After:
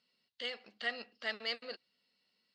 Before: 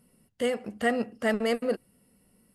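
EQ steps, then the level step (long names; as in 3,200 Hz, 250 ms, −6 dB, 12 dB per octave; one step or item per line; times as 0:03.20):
resonant band-pass 4,200 Hz, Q 4.4
high-frequency loss of the air 180 metres
+13.5 dB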